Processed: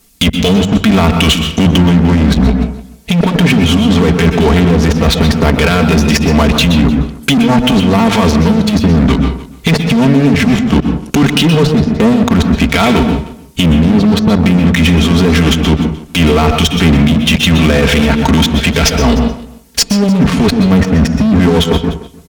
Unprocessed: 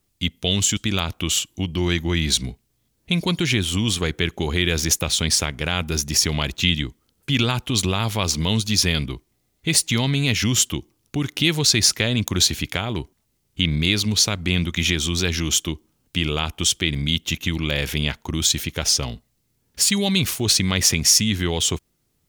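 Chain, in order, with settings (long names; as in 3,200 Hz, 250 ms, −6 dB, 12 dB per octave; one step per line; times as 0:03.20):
treble cut that deepens with the level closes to 330 Hz, closed at −14.5 dBFS
high-shelf EQ 4,000 Hz +5 dB
mains-hum notches 50/100/150 Hz
comb filter 4.4 ms, depth 91%
in parallel at −4 dB: fuzz pedal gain 29 dB, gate −34 dBFS
on the sum: compressor whose output falls as the input rises −19 dBFS, ratio −1
harmonic generator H 5 −16 dB, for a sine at −3 dBFS
single-tap delay 300 ms −23.5 dB
convolution reverb RT60 0.45 s, pre-delay 119 ms, DRR 8 dB
boost into a limiter +9.5 dB
level −1 dB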